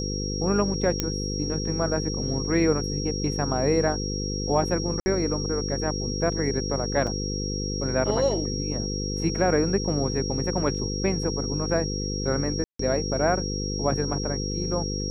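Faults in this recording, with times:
buzz 50 Hz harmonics 10 -30 dBFS
whine 5.6 kHz -32 dBFS
1.00 s: pop -9 dBFS
5.00–5.06 s: dropout 60 ms
7.07 s: dropout 3.9 ms
12.64–12.79 s: dropout 154 ms

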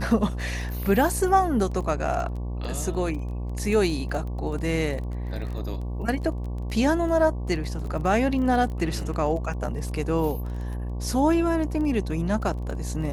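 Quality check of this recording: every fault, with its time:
buzz 60 Hz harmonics 19 -30 dBFS
crackle 18 per s -33 dBFS

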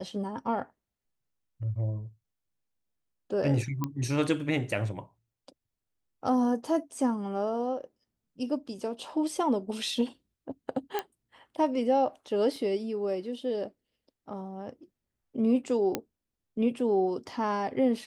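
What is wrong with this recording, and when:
3.84 s: pop -17 dBFS
10.99 s: pop -15 dBFS
12.56 s: dropout 2.2 ms
15.95 s: pop -13 dBFS

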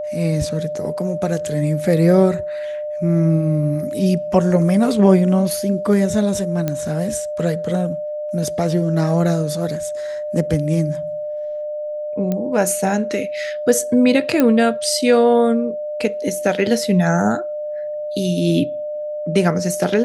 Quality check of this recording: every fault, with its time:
whine 600 Hz -23 dBFS
6.68 s: pop -8 dBFS
12.32 s: pop -10 dBFS
14.40 s: pop -3 dBFS

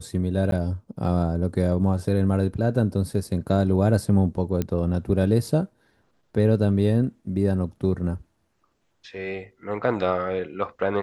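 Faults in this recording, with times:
0.51–0.52 s: dropout 12 ms
4.62 s: pop -12 dBFS

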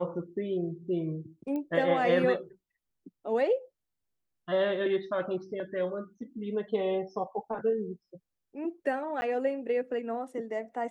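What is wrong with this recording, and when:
1.56 s: pop -25 dBFS
9.21–9.22 s: dropout 10 ms

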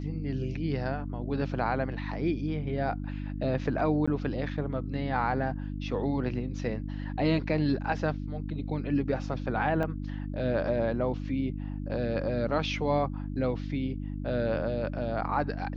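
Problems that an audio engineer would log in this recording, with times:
hum 50 Hz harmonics 6 -35 dBFS
4.06–4.08 s: dropout 15 ms
9.83 s: dropout 4.3 ms

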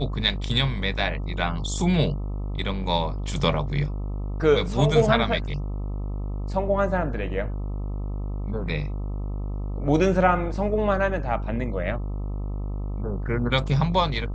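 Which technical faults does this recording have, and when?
buzz 50 Hz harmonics 26 -29 dBFS

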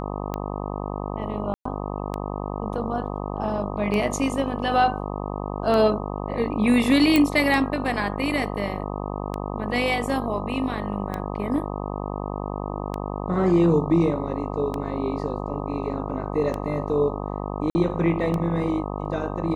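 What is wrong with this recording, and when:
buzz 50 Hz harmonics 25 -30 dBFS
tick 33 1/3 rpm -15 dBFS
1.54–1.65 s: dropout 114 ms
7.16 s: pop
17.70–17.75 s: dropout 50 ms

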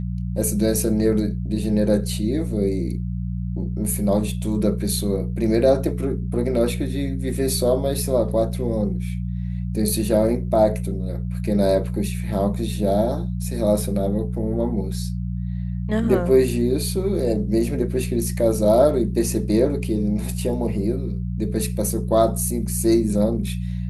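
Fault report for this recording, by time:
hum 60 Hz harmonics 3 -26 dBFS

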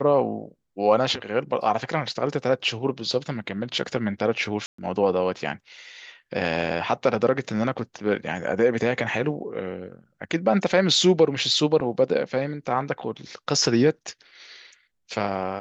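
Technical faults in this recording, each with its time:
4.66–4.78 s: dropout 124 ms

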